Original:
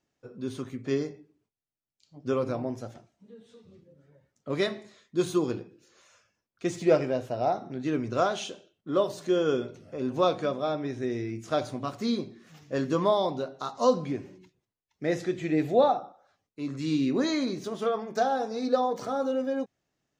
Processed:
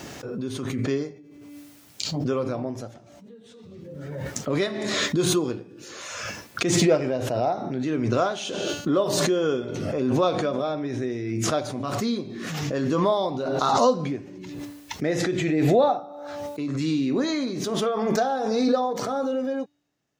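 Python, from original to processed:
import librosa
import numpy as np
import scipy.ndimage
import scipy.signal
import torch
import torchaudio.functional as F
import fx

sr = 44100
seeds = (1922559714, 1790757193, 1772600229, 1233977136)

y = scipy.signal.sosfilt(scipy.signal.butter(2, 57.0, 'highpass', fs=sr, output='sos'), x)
y = fx.comb_fb(y, sr, f0_hz=290.0, decay_s=0.88, harmonics='all', damping=0.0, mix_pct=40)
y = fx.pre_swell(y, sr, db_per_s=25.0)
y = y * librosa.db_to_amplitude(5.5)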